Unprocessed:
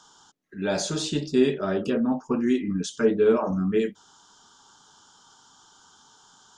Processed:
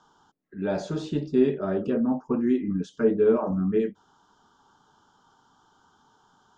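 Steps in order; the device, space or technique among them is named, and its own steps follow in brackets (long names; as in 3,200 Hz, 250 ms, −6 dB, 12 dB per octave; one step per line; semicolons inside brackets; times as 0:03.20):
through cloth (low-pass filter 7,600 Hz 12 dB per octave; high-shelf EQ 2,400 Hz −18 dB)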